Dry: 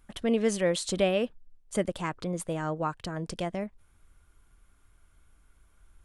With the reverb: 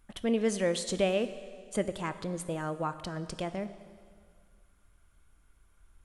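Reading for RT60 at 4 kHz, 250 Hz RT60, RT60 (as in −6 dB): 1.9 s, 2.0 s, 2.0 s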